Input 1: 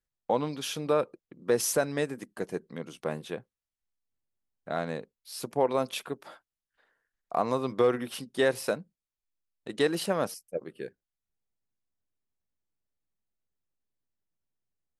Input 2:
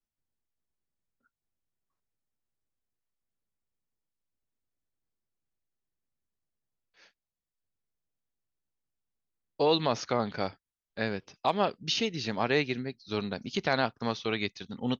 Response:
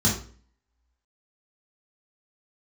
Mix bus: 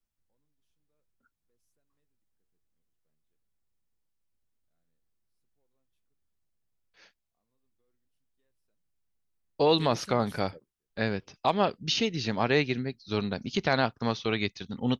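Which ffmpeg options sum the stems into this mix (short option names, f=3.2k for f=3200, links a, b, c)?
-filter_complex "[0:a]equalizer=f=810:t=o:w=2.3:g=-9.5,asoftclip=type=tanh:threshold=-21.5dB,flanger=delay=2.6:depth=9.7:regen=-72:speed=0.58:shape=sinusoidal,volume=-7.5dB[a];[1:a]volume=1.5dB,asplit=2[b][c];[c]apad=whole_len=661322[d];[a][d]sidechaingate=range=-38dB:threshold=-48dB:ratio=16:detection=peak[e];[e][b]amix=inputs=2:normalize=0,lowshelf=f=120:g=7.5"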